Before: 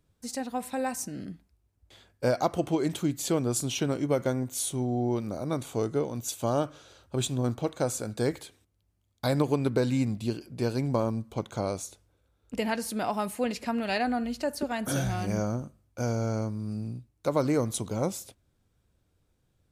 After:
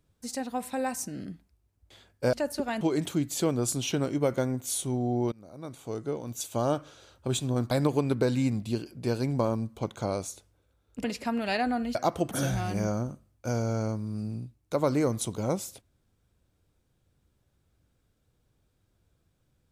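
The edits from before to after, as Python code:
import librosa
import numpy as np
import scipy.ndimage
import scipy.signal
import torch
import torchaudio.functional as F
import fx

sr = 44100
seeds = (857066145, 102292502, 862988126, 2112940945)

y = fx.edit(x, sr, fx.swap(start_s=2.33, length_s=0.36, other_s=14.36, other_length_s=0.48),
    fx.fade_in_from(start_s=5.2, length_s=1.37, floor_db=-21.5),
    fx.cut(start_s=7.59, length_s=1.67),
    fx.cut(start_s=12.59, length_s=0.86), tone=tone)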